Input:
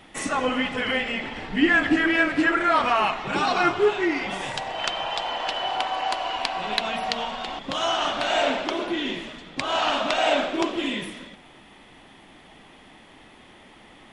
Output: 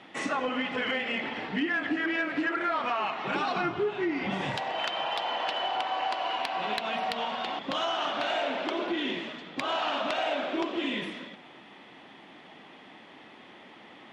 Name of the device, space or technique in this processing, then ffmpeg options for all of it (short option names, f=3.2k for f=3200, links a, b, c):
AM radio: -filter_complex "[0:a]asettb=1/sr,asplit=3[a][b][c];[a]atrim=end=3.564[d];[b]atrim=start=3.56:end=4.56,asetpts=PTS-STARTPTS,afade=t=in:d=0.004:c=qsin,afade=t=out:st=0.996:d=0.004:c=qsin,bass=f=250:g=15,treble=f=4k:g=-1[e];[c]atrim=start=4.556[f];[d][e]acrossfade=d=0.004:c1=hsin:c2=qsin[g];[g][f]acrossfade=d=0.004:c1=qsin:c2=hsin,highpass=180,lowpass=4.3k,acompressor=threshold=-26dB:ratio=5,asoftclip=type=tanh:threshold=-17dB"